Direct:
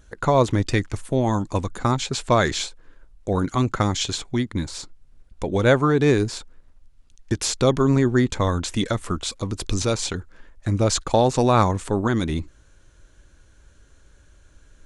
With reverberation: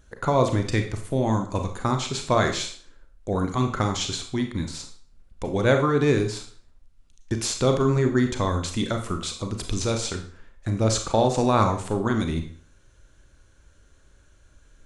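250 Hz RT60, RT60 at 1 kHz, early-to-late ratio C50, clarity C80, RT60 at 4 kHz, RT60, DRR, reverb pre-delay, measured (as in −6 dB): 0.50 s, 0.50 s, 8.5 dB, 12.5 dB, 0.45 s, 0.50 s, 5.0 dB, 30 ms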